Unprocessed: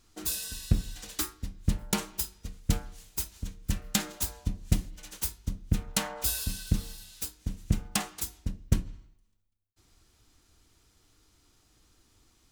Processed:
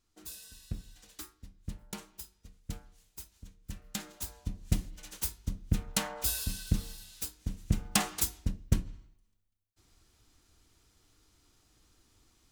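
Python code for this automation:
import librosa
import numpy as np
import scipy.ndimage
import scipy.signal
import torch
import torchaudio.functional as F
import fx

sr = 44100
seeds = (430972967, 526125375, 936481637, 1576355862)

y = fx.gain(x, sr, db=fx.line((3.62, -13.5), (4.88, -2.0), (7.76, -2.0), (8.14, 5.5), (8.7, -2.0)))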